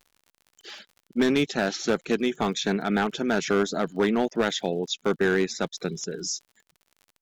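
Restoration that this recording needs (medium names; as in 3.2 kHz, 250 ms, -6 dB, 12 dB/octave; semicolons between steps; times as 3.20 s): clip repair -15 dBFS; de-click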